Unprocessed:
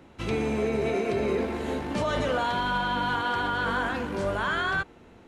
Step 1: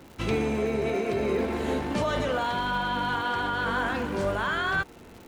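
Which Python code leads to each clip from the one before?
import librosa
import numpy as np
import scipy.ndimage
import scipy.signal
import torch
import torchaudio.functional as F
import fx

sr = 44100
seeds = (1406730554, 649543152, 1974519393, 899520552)

y = fx.rider(x, sr, range_db=5, speed_s=0.5)
y = fx.dmg_crackle(y, sr, seeds[0], per_s=250.0, level_db=-41.0)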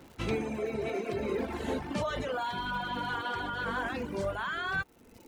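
y = fx.dereverb_blind(x, sr, rt60_s=1.3)
y = fx.rider(y, sr, range_db=5, speed_s=0.5)
y = y * 10.0 ** (-3.5 / 20.0)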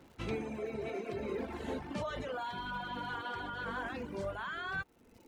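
y = fx.high_shelf(x, sr, hz=6200.0, db=-4.5)
y = y * 10.0 ** (-5.5 / 20.0)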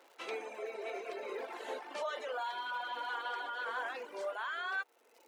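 y = scipy.signal.sosfilt(scipy.signal.butter(4, 460.0, 'highpass', fs=sr, output='sos'), x)
y = y * 10.0 ** (1.5 / 20.0)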